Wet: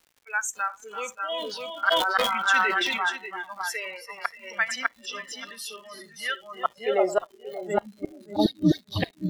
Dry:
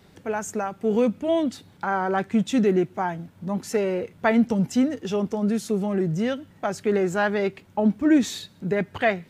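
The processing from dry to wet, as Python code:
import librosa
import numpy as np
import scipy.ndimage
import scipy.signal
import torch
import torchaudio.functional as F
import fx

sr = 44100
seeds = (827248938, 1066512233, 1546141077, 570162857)

y = fx.bin_expand(x, sr, power=1.5)
y = scipy.signal.sosfilt(scipy.signal.butter(4, 72.0, 'highpass', fs=sr, output='sos'), y)
y = fx.echo_multitap(y, sr, ms=(70, 338, 437, 596), db=(-17.5, -9.0, -19.5, -5.0))
y = fx.filter_sweep_highpass(y, sr, from_hz=1600.0, to_hz=100.0, start_s=6.3, end_s=8.46, q=2.8)
y = fx.gate_flip(y, sr, shuts_db=-14.0, range_db=-38)
y = fx.dispersion(y, sr, late='highs', ms=62.0, hz=1400.0, at=(8.22, 8.92))
y = fx.dmg_crackle(y, sr, seeds[0], per_s=180.0, level_db=-33.0)
y = fx.echo_feedback(y, sr, ms=580, feedback_pct=16, wet_db=-13.5)
y = fx.noise_reduce_blind(y, sr, reduce_db=18)
y = fx.sustainer(y, sr, db_per_s=31.0, at=(1.34, 3.06))
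y = y * 10.0 ** (5.5 / 20.0)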